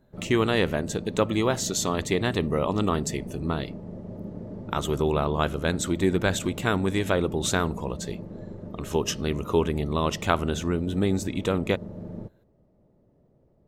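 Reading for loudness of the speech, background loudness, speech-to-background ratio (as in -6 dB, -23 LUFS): -26.5 LUFS, -38.5 LUFS, 12.0 dB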